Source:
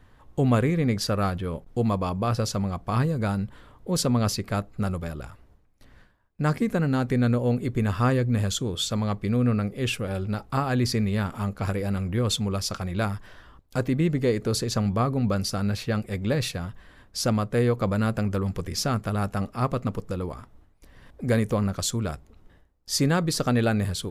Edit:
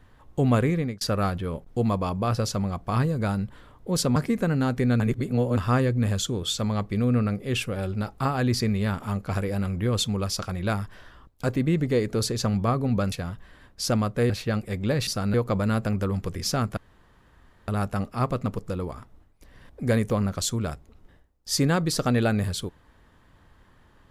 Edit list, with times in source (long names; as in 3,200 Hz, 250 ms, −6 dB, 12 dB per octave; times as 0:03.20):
0:00.74–0:01.01: fade out
0:04.16–0:06.48: remove
0:07.32–0:07.89: reverse
0:15.44–0:15.71: swap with 0:16.48–0:17.66
0:19.09: splice in room tone 0.91 s